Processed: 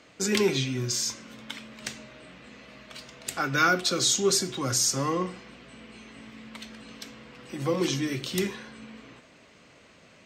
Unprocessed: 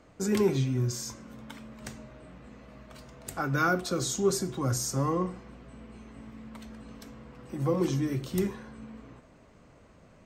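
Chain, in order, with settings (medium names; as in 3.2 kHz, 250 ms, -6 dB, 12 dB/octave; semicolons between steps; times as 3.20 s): frequency weighting D; trim +1.5 dB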